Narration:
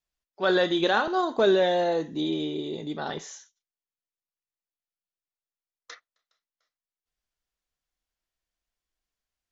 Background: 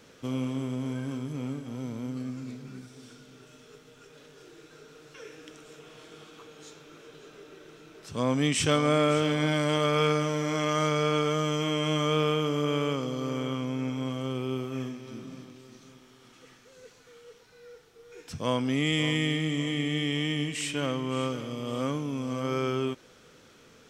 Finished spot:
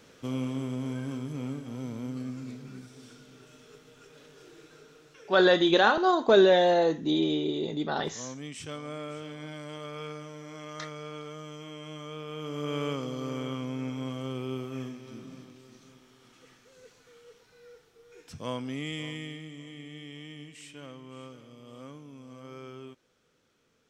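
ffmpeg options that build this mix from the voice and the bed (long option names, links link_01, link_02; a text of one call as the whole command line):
ffmpeg -i stem1.wav -i stem2.wav -filter_complex "[0:a]adelay=4900,volume=2dB[link_01];[1:a]volume=11dB,afade=type=out:start_time=4.63:duration=0.95:silence=0.199526,afade=type=in:start_time=12.27:duration=0.59:silence=0.251189,afade=type=out:start_time=17.68:duration=1.84:silence=0.237137[link_02];[link_01][link_02]amix=inputs=2:normalize=0" out.wav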